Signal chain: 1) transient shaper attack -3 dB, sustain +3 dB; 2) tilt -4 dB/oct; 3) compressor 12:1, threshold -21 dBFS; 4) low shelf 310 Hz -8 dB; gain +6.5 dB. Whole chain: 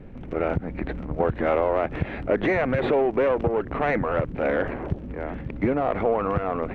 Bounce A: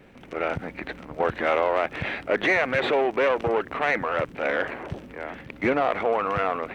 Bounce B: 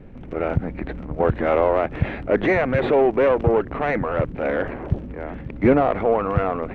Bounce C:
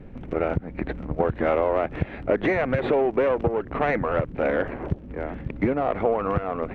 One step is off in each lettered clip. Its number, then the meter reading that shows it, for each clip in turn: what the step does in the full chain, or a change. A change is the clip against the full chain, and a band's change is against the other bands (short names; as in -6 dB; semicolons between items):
2, 4 kHz band +10.0 dB; 3, mean gain reduction 2.0 dB; 1, crest factor change +1.5 dB